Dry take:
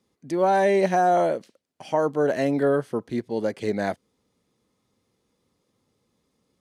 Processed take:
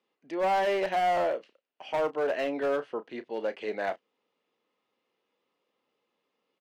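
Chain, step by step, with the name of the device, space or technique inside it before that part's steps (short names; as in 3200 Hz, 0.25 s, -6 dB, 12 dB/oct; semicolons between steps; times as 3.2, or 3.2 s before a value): megaphone (BPF 470–3000 Hz; bell 2800 Hz +9 dB 0.29 oct; hard clip -21 dBFS, distortion -12 dB; doubler 32 ms -13 dB); gain -2.5 dB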